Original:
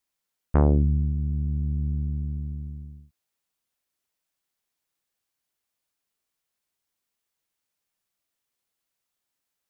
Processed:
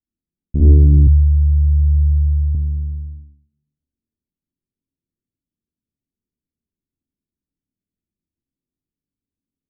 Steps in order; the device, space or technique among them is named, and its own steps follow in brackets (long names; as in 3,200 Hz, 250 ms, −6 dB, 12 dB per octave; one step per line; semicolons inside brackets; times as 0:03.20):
next room (low-pass filter 310 Hz 24 dB per octave; convolution reverb RT60 0.80 s, pre-delay 50 ms, DRR −8 dB)
0:01.07–0:02.55: inverse Chebyshev band-stop filter 300–1,300 Hz, stop band 50 dB
level +2.5 dB